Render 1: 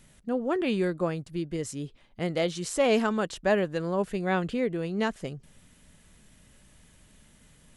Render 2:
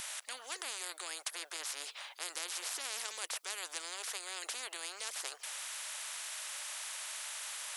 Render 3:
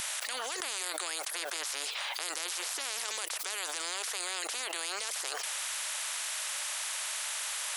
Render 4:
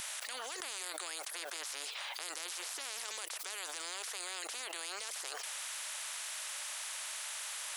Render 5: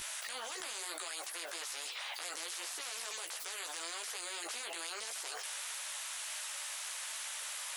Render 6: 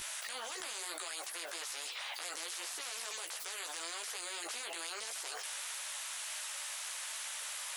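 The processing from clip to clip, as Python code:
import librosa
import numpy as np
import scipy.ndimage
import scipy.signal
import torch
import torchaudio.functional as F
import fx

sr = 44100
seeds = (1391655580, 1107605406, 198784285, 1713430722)

y1 = scipy.signal.sosfilt(scipy.signal.bessel(8, 1200.0, 'highpass', norm='mag', fs=sr, output='sos'), x)
y1 = fx.spectral_comp(y1, sr, ratio=10.0)
y1 = F.gain(torch.from_numpy(y1), -2.0).numpy()
y2 = fx.env_flatten(y1, sr, amount_pct=100)
y3 = fx.dmg_noise_colour(y2, sr, seeds[0], colour='violet', level_db=-66.0)
y3 = F.gain(torch.from_numpy(y3), -6.0).numpy()
y4 = fx.chorus_voices(y3, sr, voices=6, hz=0.92, base_ms=15, depth_ms=3.0, mix_pct=45)
y4 = y4 + 10.0 ** (-21.5 / 20.0) * np.pad(y4, (int(356 * sr / 1000.0), 0))[:len(y4)]
y4 = F.gain(torch.from_numpy(y4), 3.0).numpy()
y5 = fx.dmg_crackle(y4, sr, seeds[1], per_s=490.0, level_db=-59.0)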